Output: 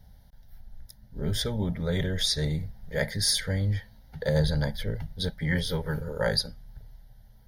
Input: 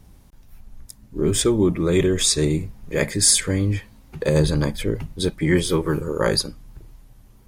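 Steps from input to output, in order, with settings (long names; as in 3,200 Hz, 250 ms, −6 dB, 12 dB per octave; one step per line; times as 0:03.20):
phaser with its sweep stopped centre 1,700 Hz, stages 8
level −3 dB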